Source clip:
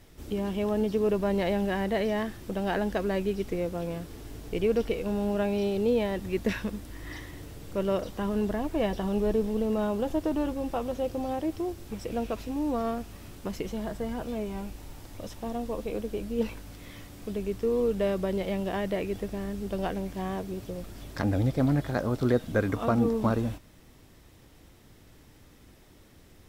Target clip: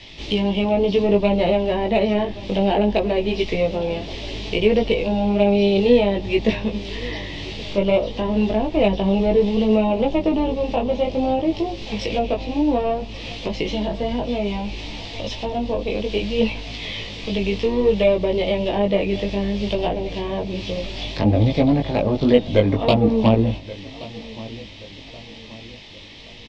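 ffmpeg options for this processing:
ffmpeg -i in.wav -filter_complex "[0:a]lowpass=7100,equalizer=frequency=790:width_type=o:width=1.6:gain=14,bandreject=frequency=750:width=12,acrossover=split=300|920|3900[link_01][link_02][link_03][link_04];[link_01]acontrast=74[link_05];[link_02]aeval=exprs='0.376*(cos(1*acos(clip(val(0)/0.376,-1,1)))-cos(1*PI/2))+0.0106*(cos(6*acos(clip(val(0)/0.376,-1,1)))-cos(6*PI/2))':channel_layout=same[link_06];[link_03]acompressor=threshold=-46dB:ratio=12[link_07];[link_04]acrusher=bits=3:mix=0:aa=0.5[link_08];[link_05][link_06][link_07][link_08]amix=inputs=4:normalize=0,aexciter=amount=8.9:drive=10:freq=2300,flanger=delay=18:depth=2.6:speed=0.6,aecho=1:1:1127|2254|3381:0.112|0.0494|0.0217,volume=4dB" out.wav

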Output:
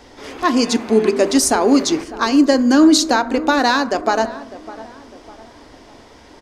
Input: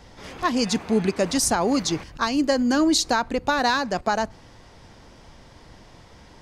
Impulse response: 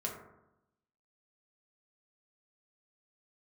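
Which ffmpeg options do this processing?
-filter_complex "[0:a]lowshelf=frequency=220:width_type=q:width=3:gain=-6.5,asplit=2[link_01][link_02];[link_02]adelay=603,lowpass=frequency=1800:poles=1,volume=-16.5dB,asplit=2[link_03][link_04];[link_04]adelay=603,lowpass=frequency=1800:poles=1,volume=0.43,asplit=2[link_05][link_06];[link_06]adelay=603,lowpass=frequency=1800:poles=1,volume=0.43,asplit=2[link_07][link_08];[link_08]adelay=603,lowpass=frequency=1800:poles=1,volume=0.43[link_09];[link_01][link_03][link_05][link_07][link_09]amix=inputs=5:normalize=0,asplit=2[link_10][link_11];[1:a]atrim=start_sample=2205[link_12];[link_11][link_12]afir=irnorm=-1:irlink=0,volume=-9.5dB[link_13];[link_10][link_13]amix=inputs=2:normalize=0,volume=3dB"

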